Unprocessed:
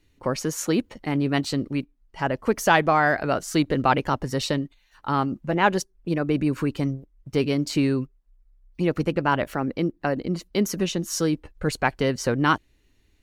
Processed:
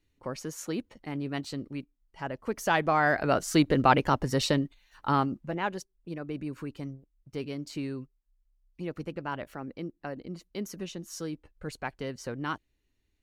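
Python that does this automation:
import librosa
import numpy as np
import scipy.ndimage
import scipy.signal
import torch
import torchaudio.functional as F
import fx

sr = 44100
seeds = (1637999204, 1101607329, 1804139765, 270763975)

y = fx.gain(x, sr, db=fx.line((2.44, -10.5), (3.36, -1.0), (5.11, -1.0), (5.73, -13.0)))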